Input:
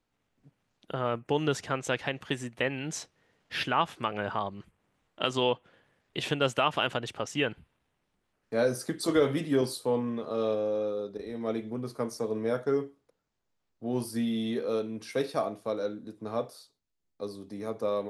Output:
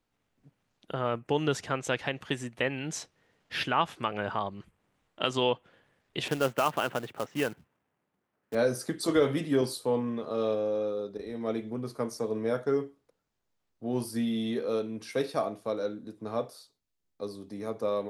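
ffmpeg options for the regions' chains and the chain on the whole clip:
ffmpeg -i in.wav -filter_complex "[0:a]asettb=1/sr,asplit=3[link_01][link_02][link_03];[link_01]atrim=end=6.284[link_04];[link_02]atrim=start=6.28:end=8.55,asetpts=PTS-STARTPTS,afade=type=in:duration=0.004:curve=qsin,afade=type=out:start_time=2.266:duration=0.004:curve=qsin,highpass=130,lowpass=2000,acrusher=bits=3:mode=log:mix=0:aa=0.000001[link_05];[link_03]atrim=start=8.546[link_06];[link_04][link_05]acrossfade=duration=0.004:curve1=hsin:curve2=qsin[link_07];[link_07][link_06]acrossfade=duration=0.004:curve1=qsin:curve2=hsin" out.wav

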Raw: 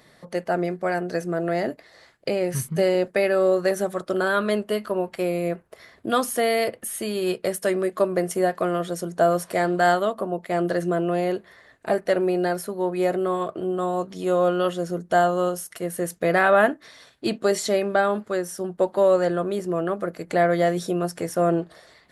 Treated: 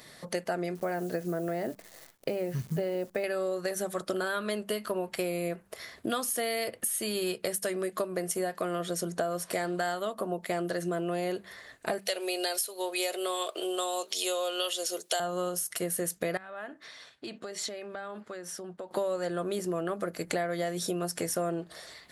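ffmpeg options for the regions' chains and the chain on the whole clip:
ffmpeg -i in.wav -filter_complex "[0:a]asettb=1/sr,asplit=3[link_01][link_02][link_03];[link_01]atrim=end=0.754[link_04];[link_02]atrim=start=0.75:end=3.24,asetpts=PTS-STARTPTS,afade=type=in:duration=0.004:curve=qsin,afade=type=out:start_time=2.486:duration=0.004:curve=qsin,lowpass=frequency=3700:width=0.5412,lowpass=frequency=3700:width=1.3066,acrusher=bits=9:dc=4:mix=0:aa=0.000001,equalizer=frequency=2700:width_type=o:width=2.5:gain=-8[link_05];[link_03]atrim=start=3.236[link_06];[link_04][link_05]acrossfade=duration=0.004:curve1=hsin:curve2=qsin[link_07];[link_07][link_06]acrossfade=duration=0.004:curve1=qsin:curve2=hsin,asettb=1/sr,asplit=3[link_08][link_09][link_10];[link_08]atrim=end=8.754[link_11];[link_09]atrim=start=8.75:end=9.53,asetpts=PTS-STARTPTS,afade=type=in:duration=0.004:curve=qsin,afade=type=out:start_time=0.776:duration=0.004:curve=qsin,highshelf=frequency=6200:gain=-5,bandreject=frequency=880:width=25[link_12];[link_10]atrim=start=9.526[link_13];[link_11][link_12]acrossfade=duration=0.004:curve1=hsin:curve2=qsin[link_14];[link_14][link_13]acrossfade=duration=0.004:curve1=qsin:curve2=hsin,asettb=1/sr,asplit=3[link_15][link_16][link_17];[link_15]atrim=end=11.994[link_18];[link_16]atrim=start=11.99:end=15.2,asetpts=PTS-STARTPTS,afade=type=in:duration=0.004:curve=qsin,afade=type=out:start_time=3.206:duration=0.004:curve=qsin,highpass=frequency=410:width=0.5412,highpass=frequency=410:width=1.3066,highshelf=frequency=2200:width_type=q:width=1.5:gain=9.5[link_19];[link_17]atrim=start=15.196[link_20];[link_18][link_19]acrossfade=duration=0.004:curve1=hsin:curve2=qsin[link_21];[link_21][link_20]acrossfade=duration=0.004:curve1=qsin:curve2=hsin,asettb=1/sr,asplit=3[link_22][link_23][link_24];[link_22]atrim=end=16.374[link_25];[link_23]atrim=start=16.37:end=18.91,asetpts=PTS-STARTPTS,afade=type=in:duration=0.004:curve=qsin,afade=type=out:start_time=2.536:duration=0.004:curve=qsin,highpass=frequency=1200:poles=1,aemphasis=mode=reproduction:type=riaa,acompressor=threshold=-37dB:ratio=8:attack=3.2:release=140:knee=1:detection=peak[link_26];[link_24]atrim=start=18.906[link_27];[link_25][link_26]acrossfade=duration=0.004:curve1=hsin:curve2=qsin[link_28];[link_28][link_27]acrossfade=duration=0.004:curve1=qsin:curve2=hsin,highshelf=frequency=2800:gain=10,bandreject=frequency=97.55:width_type=h:width=4,bandreject=frequency=195.1:width_type=h:width=4,acompressor=threshold=-28dB:ratio=10" out.wav

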